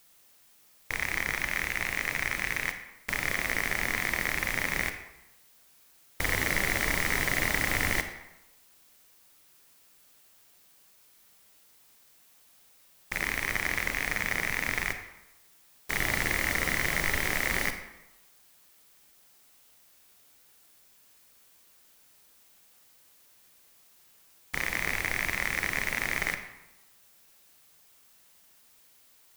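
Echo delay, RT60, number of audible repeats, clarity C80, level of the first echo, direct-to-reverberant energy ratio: no echo, 0.95 s, no echo, 10.5 dB, no echo, 7.5 dB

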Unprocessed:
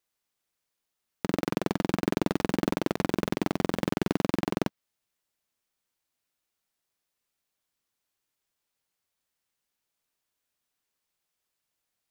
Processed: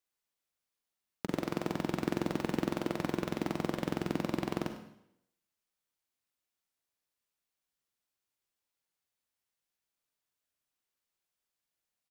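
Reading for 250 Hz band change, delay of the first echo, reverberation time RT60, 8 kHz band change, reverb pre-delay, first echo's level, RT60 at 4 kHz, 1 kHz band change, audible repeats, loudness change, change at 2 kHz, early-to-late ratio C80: -6.0 dB, 101 ms, 0.75 s, -6.0 dB, 37 ms, -15.5 dB, 0.75 s, -5.5 dB, 1, -5.5 dB, -5.5 dB, 9.5 dB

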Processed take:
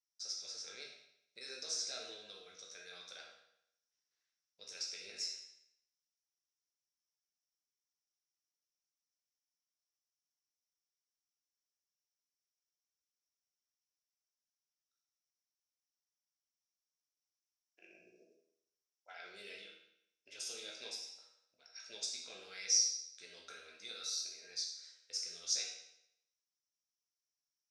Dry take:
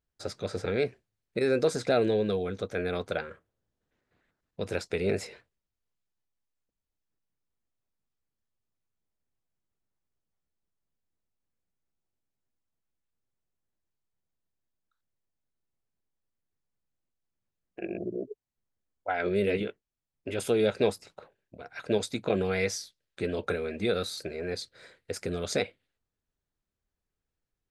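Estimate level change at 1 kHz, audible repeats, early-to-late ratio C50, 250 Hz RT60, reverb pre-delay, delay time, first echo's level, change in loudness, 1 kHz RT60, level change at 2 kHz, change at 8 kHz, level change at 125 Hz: -22.5 dB, no echo, 4.0 dB, 0.80 s, 12 ms, no echo, no echo, -9.0 dB, 0.75 s, -15.5 dB, +5.0 dB, under -40 dB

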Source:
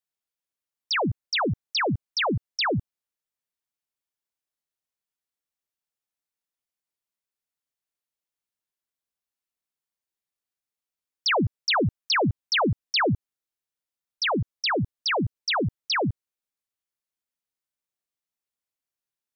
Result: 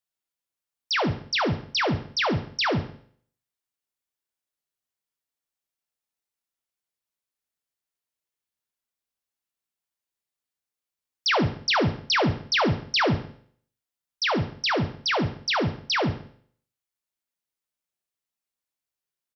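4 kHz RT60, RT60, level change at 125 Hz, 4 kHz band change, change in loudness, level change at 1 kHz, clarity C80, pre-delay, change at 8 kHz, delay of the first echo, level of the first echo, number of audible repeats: 0.55 s, 0.55 s, +0.5 dB, +0.5 dB, +0.5 dB, +0.5 dB, 15.5 dB, 8 ms, no reading, 69 ms, -15.0 dB, 3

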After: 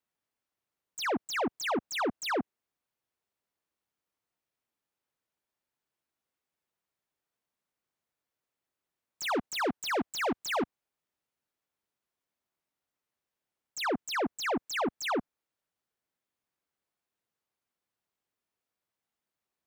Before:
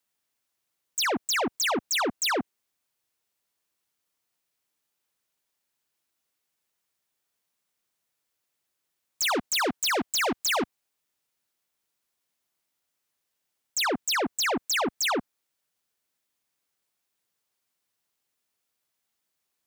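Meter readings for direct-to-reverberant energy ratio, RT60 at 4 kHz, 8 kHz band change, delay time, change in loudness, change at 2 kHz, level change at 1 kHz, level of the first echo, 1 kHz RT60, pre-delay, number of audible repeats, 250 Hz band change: no reverb, no reverb, -12.0 dB, no echo, -6.0 dB, -6.0 dB, -3.5 dB, no echo, no reverb, no reverb, no echo, -2.0 dB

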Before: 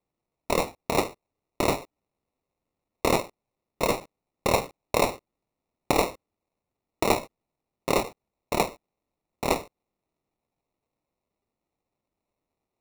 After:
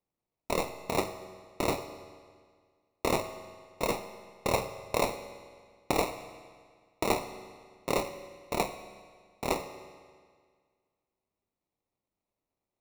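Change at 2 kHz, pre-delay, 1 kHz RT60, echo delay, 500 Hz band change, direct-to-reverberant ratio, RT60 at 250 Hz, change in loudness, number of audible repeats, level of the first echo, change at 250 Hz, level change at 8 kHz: -5.0 dB, 11 ms, 1.8 s, no echo, -5.0 dB, 9.5 dB, 1.8 s, -5.5 dB, no echo, no echo, -5.0 dB, -5.0 dB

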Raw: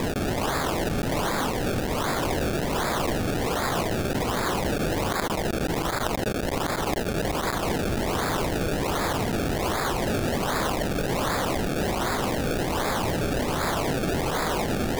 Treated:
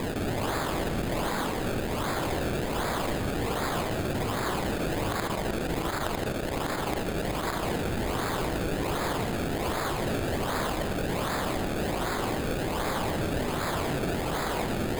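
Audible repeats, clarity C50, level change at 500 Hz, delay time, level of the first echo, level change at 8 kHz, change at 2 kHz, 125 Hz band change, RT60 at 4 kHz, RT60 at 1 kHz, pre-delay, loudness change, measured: no echo, 6.0 dB, -3.5 dB, no echo, no echo, -5.0 dB, -3.5 dB, -3.0 dB, 1.4 s, 1.5 s, 37 ms, -3.5 dB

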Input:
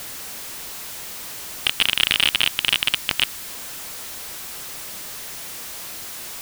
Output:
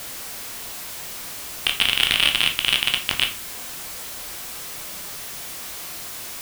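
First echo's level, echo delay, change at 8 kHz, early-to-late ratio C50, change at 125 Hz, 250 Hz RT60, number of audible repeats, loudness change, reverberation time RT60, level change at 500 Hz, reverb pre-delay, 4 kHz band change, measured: no echo, no echo, 0.0 dB, 10.5 dB, +1.0 dB, 0.55 s, no echo, 0.0 dB, 0.45 s, +1.0 dB, 12 ms, 0.0 dB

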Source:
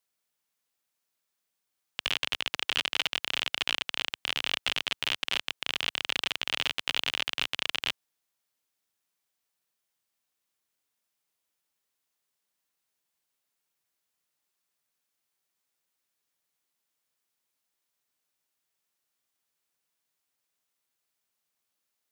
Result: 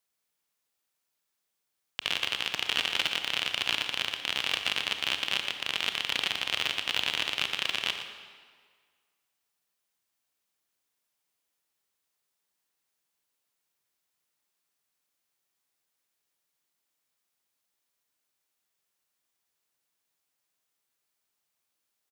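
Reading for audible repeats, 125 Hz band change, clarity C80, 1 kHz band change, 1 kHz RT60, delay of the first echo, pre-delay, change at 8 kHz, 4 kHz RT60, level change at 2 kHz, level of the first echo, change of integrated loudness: 1, +1.0 dB, 7.0 dB, +1.0 dB, 1.8 s, 117 ms, 25 ms, +1.0 dB, 1.4 s, +1.0 dB, -11.0 dB, +1.0 dB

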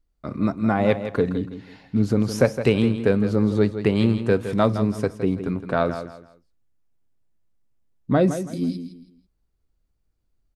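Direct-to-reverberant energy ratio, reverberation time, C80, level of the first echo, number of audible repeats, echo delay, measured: no reverb, no reverb, no reverb, -10.5 dB, 3, 164 ms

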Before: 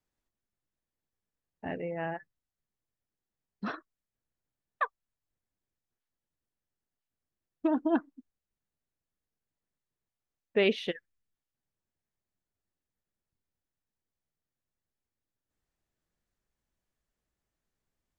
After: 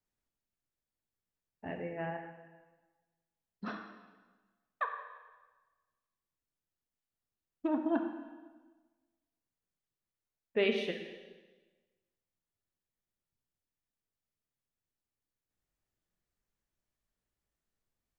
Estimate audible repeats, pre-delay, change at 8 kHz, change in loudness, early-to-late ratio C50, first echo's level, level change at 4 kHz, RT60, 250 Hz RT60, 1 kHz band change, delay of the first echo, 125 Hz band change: no echo, 6 ms, no reading, -4.0 dB, 5.5 dB, no echo, -3.5 dB, 1.3 s, 1.4 s, -3.0 dB, no echo, -3.5 dB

